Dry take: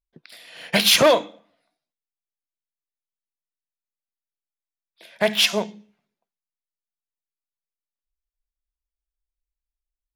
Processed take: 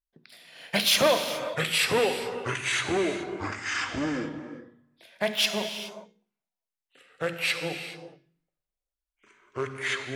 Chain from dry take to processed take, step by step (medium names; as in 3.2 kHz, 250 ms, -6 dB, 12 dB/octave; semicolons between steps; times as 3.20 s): hum notches 60/120/180/240/300/360/420/480 Hz; ever faster or slower copies 643 ms, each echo -4 st, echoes 3; gated-style reverb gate 450 ms flat, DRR 7 dB; trim -6.5 dB